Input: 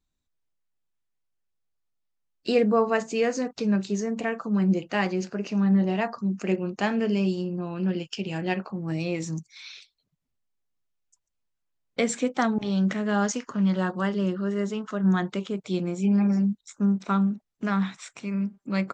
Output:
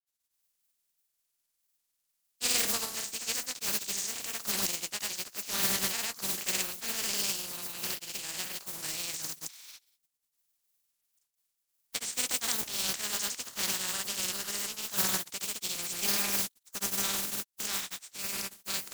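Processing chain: spectral contrast reduction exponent 0.26; granulator, spray 100 ms; pre-emphasis filter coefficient 0.8; trim -1 dB

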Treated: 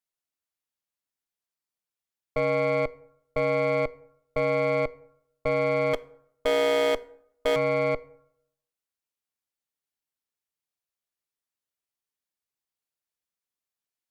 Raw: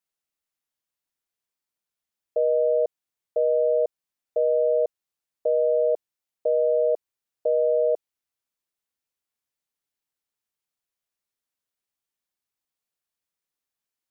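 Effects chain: 5.93–7.56 s: peaking EQ 420 Hz +4 dB 1.1 oct; Chebyshev shaper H 4 -9 dB, 8 -25 dB, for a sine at -15 dBFS; plate-style reverb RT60 0.73 s, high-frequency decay 0.55×, DRR 17.5 dB; trim -4 dB

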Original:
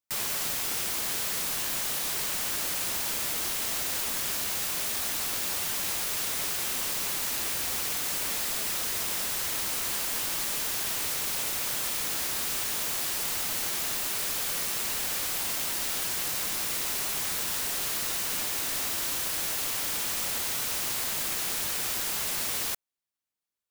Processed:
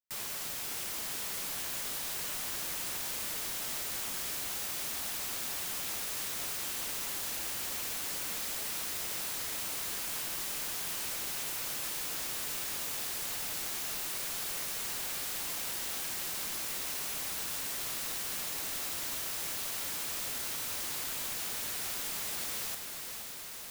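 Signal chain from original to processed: on a send: echo that smears into a reverb 504 ms, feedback 77%, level -7 dB; on the sum: trim -8 dB

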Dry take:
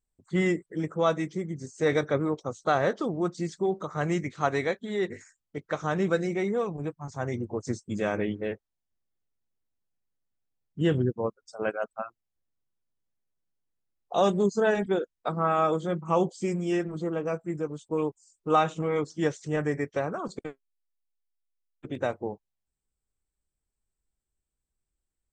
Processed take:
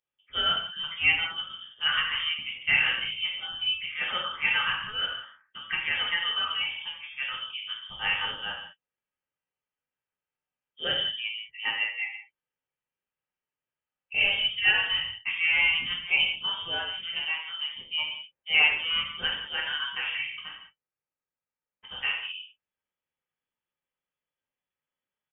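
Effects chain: high-pass 1.4 kHz 6 dB/octave; comb 2.8 ms, depth 34%; gated-style reverb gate 220 ms falling, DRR -4 dB; frequency inversion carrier 3.4 kHz; trim +2 dB

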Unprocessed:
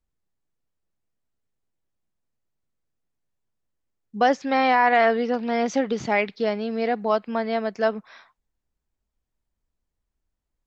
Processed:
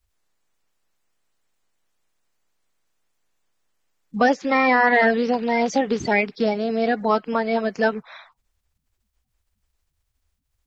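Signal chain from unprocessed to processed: coarse spectral quantiser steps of 30 dB; in parallel at +1 dB: compression, threshold -28 dBFS, peak gain reduction 13.5 dB

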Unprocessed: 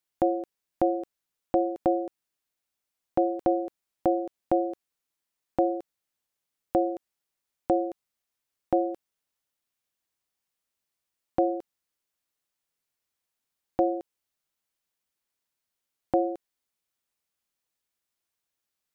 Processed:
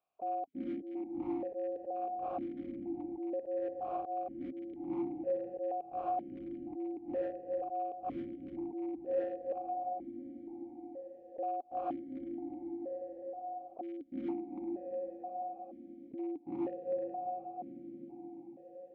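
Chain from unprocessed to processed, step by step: coarse spectral quantiser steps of 30 dB; tilt EQ -4 dB/octave; on a send: echo that smears into a reverb 452 ms, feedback 58%, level -11.5 dB; on the sum: slow attack 522 ms; in parallel at -2.5 dB: compression 10:1, threshold -43 dBFS, peak gain reduction 15.5 dB; on the sum: dynamic bell 600 Hz, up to -4 dB, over -43 dBFS, Q 0.72; hard clipper -32 dBFS, distortion -14 dB; stepped vowel filter 2.1 Hz; trim +10 dB

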